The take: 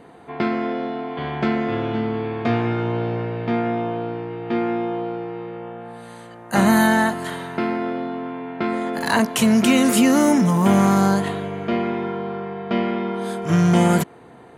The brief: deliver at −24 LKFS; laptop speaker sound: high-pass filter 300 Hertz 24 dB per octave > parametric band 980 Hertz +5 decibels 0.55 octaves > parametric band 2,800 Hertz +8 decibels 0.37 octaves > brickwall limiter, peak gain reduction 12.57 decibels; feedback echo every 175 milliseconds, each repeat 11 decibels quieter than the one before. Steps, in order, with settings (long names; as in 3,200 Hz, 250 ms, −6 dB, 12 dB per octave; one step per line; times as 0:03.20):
high-pass filter 300 Hz 24 dB per octave
parametric band 980 Hz +5 dB 0.55 octaves
parametric band 2,800 Hz +8 dB 0.37 octaves
repeating echo 175 ms, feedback 28%, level −11 dB
level +3 dB
brickwall limiter −14.5 dBFS